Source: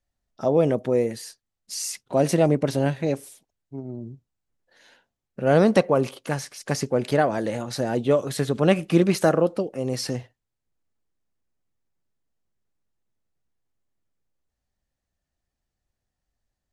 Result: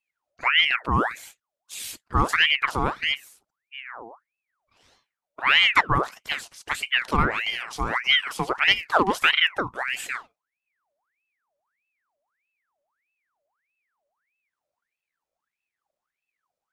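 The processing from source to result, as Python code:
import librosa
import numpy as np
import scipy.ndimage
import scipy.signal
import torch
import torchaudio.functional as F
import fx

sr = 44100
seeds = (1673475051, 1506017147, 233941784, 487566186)

y = fx.dynamic_eq(x, sr, hz=550.0, q=0.78, threshold_db=-31.0, ratio=4.0, max_db=5)
y = fx.ring_lfo(y, sr, carrier_hz=1600.0, swing_pct=65, hz=1.6)
y = y * librosa.db_to_amplitude(-2.0)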